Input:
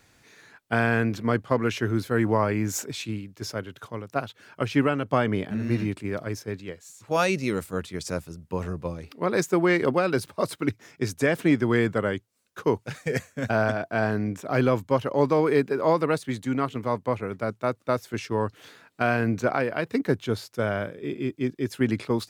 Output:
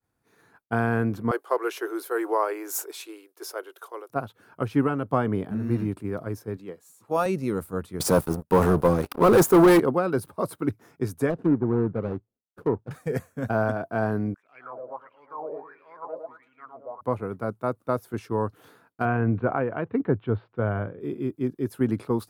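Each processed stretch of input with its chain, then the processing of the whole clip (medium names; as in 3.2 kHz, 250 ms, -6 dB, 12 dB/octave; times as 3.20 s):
1.31–4.10 s: elliptic high-pass 350 Hz + treble shelf 2.3 kHz +9 dB
6.57–7.26 s: high-pass 180 Hz + band-stop 1.5 kHz, Q 13 + hard clipper -14.5 dBFS
8.00–9.80 s: high-pass 240 Hz 6 dB/octave + waveshaping leveller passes 5
11.30–12.91 s: median filter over 41 samples + low-pass that closes with the level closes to 1.5 kHz, closed at -20 dBFS
14.34–17.01 s: filtered feedback delay 109 ms, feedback 58%, low-pass 3.4 kHz, level -5.5 dB + wah-wah 1.5 Hz 560–2700 Hz, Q 10
19.05–21.01 s: steep low-pass 3.1 kHz + peaking EQ 100 Hz +6 dB 0.55 oct
whole clip: expander -49 dBFS; high-order bell 3.7 kHz -11.5 dB 2.4 oct; band-stop 590 Hz, Q 12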